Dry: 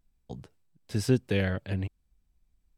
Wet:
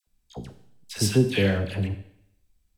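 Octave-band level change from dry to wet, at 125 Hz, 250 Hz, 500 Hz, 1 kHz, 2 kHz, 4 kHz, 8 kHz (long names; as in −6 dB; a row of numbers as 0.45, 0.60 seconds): +4.5, +5.0, +5.0, +4.5, +5.0, +10.0, +11.5 decibels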